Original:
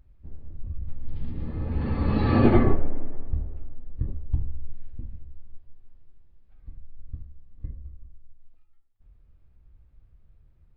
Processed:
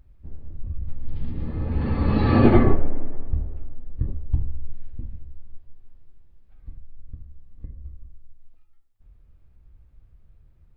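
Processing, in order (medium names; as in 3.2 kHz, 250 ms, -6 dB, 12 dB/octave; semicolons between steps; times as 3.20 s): 6.70–7.84 s: compression 3:1, threshold -35 dBFS, peak gain reduction 6.5 dB; trim +3 dB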